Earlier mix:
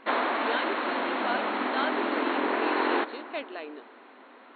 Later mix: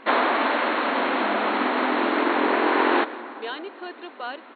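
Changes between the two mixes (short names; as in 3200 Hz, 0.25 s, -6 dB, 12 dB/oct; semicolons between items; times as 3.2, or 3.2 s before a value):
speech: entry +2.95 s; background +6.0 dB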